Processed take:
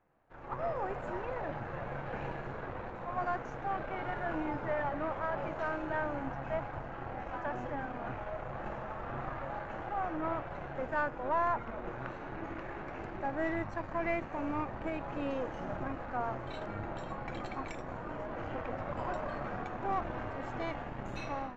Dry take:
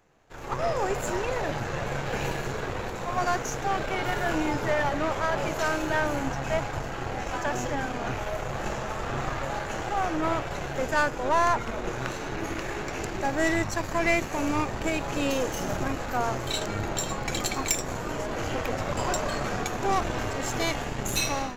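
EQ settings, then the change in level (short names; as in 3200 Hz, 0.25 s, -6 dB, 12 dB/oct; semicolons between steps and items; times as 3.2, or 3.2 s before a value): LPF 1600 Hz 12 dB/oct; low shelf 220 Hz -4 dB; bell 420 Hz -6 dB 0.28 oct; -6.5 dB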